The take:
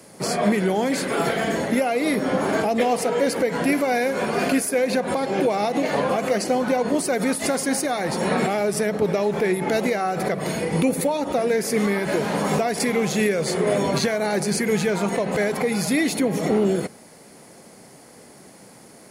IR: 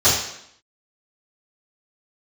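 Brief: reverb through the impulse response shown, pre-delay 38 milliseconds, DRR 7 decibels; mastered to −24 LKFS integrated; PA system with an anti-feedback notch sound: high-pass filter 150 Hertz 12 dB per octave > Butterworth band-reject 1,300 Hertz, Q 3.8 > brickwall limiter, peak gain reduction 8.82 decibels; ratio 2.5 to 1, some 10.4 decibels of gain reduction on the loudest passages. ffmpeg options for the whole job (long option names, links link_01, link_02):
-filter_complex "[0:a]acompressor=threshold=-33dB:ratio=2.5,asplit=2[link_01][link_02];[1:a]atrim=start_sample=2205,adelay=38[link_03];[link_02][link_03]afir=irnorm=-1:irlink=0,volume=-28dB[link_04];[link_01][link_04]amix=inputs=2:normalize=0,highpass=150,asuperstop=centerf=1300:order=8:qfactor=3.8,volume=11.5dB,alimiter=limit=-15.5dB:level=0:latency=1"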